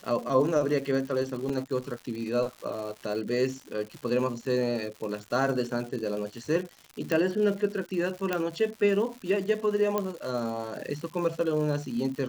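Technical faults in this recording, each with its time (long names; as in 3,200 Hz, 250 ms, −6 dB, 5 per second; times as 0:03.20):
surface crackle 250 per second −36 dBFS
0:01.49: drop-out 4.6 ms
0:07.12: click −14 dBFS
0:08.33: click −13 dBFS
0:09.98: click −14 dBFS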